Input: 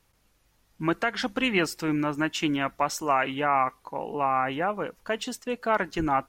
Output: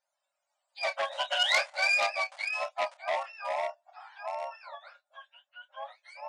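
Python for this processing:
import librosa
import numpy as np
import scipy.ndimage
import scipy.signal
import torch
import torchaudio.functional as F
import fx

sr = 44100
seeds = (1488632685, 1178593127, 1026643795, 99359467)

p1 = fx.octave_mirror(x, sr, pivot_hz=860.0)
p2 = fx.doppler_pass(p1, sr, speed_mps=12, closest_m=3.9, pass_at_s=1.57)
p3 = fx.dynamic_eq(p2, sr, hz=700.0, q=2.7, threshold_db=-53.0, ratio=4.0, max_db=6)
p4 = np.where(np.abs(p3) >= 10.0 ** (-33.0 / 20.0), p3, 0.0)
p5 = p3 + F.gain(torch.from_numpy(p4), -11.0).numpy()
p6 = fx.brickwall_bandpass(p5, sr, low_hz=540.0, high_hz=10000.0)
p7 = fx.doubler(p6, sr, ms=29.0, db=-10.5)
p8 = fx.transformer_sat(p7, sr, knee_hz=3600.0)
y = F.gain(torch.from_numpy(p8), 5.5).numpy()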